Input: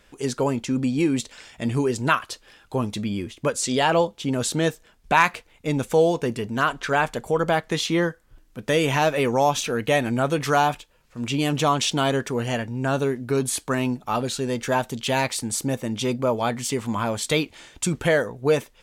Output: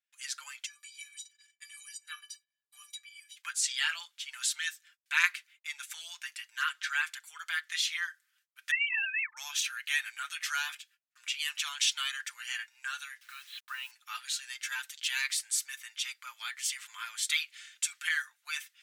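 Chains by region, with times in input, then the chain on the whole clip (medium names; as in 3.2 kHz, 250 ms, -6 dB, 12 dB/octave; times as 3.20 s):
0.66–3.36 s: treble shelf 3.8 kHz +8.5 dB + inharmonic resonator 350 Hz, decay 0.2 s, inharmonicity 0.03 + three bands compressed up and down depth 70%
8.71–9.37 s: formants replaced by sine waves + tilt EQ +4.5 dB/octave
13.21–13.91 s: rippled Chebyshev low-pass 4.1 kHz, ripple 6 dB + word length cut 8-bit, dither none
whole clip: gate -50 dBFS, range -30 dB; steep high-pass 1.5 kHz 36 dB/octave; comb 5.7 ms, depth 56%; trim -4.5 dB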